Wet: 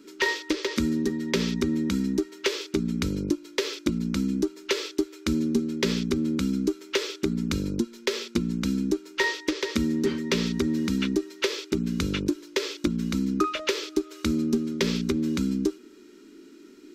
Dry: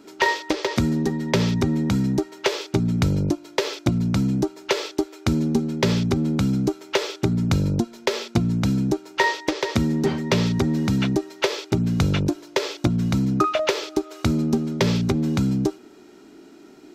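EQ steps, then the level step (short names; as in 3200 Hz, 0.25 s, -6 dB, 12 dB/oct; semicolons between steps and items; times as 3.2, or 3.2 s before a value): fixed phaser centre 300 Hz, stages 4; -1.5 dB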